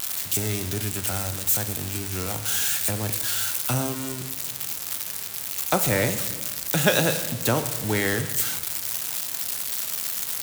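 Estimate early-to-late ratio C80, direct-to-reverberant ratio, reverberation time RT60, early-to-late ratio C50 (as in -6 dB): 12.5 dB, 9.0 dB, 1.3 s, 10.5 dB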